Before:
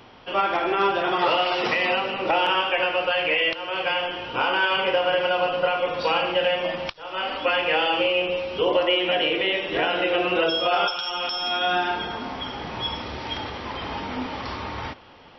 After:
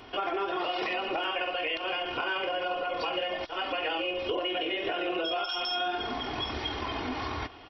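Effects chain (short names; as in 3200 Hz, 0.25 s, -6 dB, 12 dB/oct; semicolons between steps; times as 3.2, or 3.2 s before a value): dynamic EQ 550 Hz, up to +5 dB, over -38 dBFS, Q 5.5; comb 2.8 ms, depth 54%; compressor 4:1, threshold -29 dBFS, peak gain reduction 12 dB; tempo 2×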